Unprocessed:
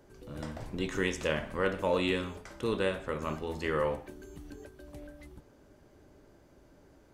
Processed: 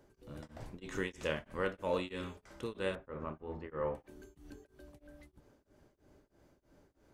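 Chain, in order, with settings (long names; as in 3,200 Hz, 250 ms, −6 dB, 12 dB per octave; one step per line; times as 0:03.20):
0:02.95–0:03.95: low-pass filter 1,500 Hz 12 dB per octave
tremolo along a rectified sine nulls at 3.1 Hz
level −4.5 dB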